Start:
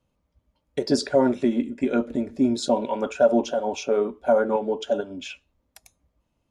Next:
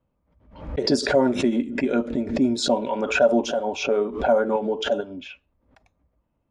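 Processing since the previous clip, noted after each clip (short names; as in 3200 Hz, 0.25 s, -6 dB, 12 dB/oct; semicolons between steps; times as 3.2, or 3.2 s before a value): low-pass opened by the level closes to 1800 Hz, open at -17.5 dBFS; backwards sustainer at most 100 dB/s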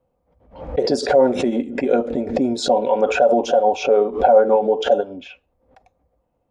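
limiter -13 dBFS, peak gain reduction 6 dB; small resonant body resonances 510/730 Hz, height 14 dB, ringing for 35 ms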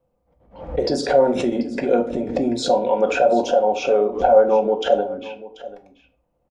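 echo 0.736 s -17.5 dB; shoebox room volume 290 m³, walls furnished, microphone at 0.79 m; gain -2 dB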